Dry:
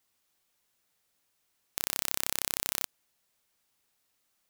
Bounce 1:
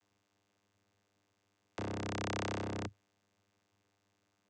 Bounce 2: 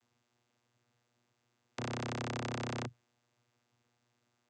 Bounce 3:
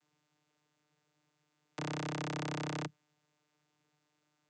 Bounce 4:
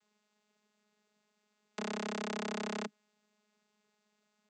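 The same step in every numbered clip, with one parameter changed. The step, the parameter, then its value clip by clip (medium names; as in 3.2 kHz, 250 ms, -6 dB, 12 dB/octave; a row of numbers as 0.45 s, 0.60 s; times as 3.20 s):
vocoder, frequency: 100 Hz, 120 Hz, 150 Hz, 210 Hz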